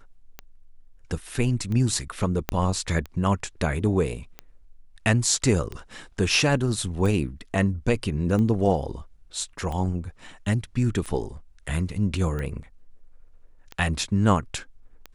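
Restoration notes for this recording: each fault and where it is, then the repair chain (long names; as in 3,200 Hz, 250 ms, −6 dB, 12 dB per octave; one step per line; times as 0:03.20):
scratch tick 45 rpm −20 dBFS
0:02.49: click −9 dBFS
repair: click removal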